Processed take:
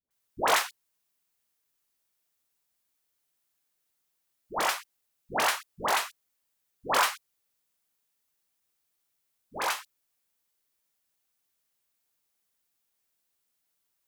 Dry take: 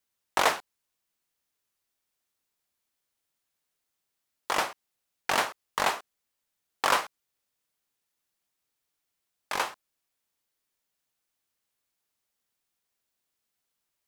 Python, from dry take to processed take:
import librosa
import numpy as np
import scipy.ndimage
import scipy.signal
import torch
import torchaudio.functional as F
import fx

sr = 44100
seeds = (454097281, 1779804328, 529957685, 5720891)

y = fx.high_shelf(x, sr, hz=9100.0, db=6.5)
y = fx.dispersion(y, sr, late='highs', ms=108.0, hz=710.0)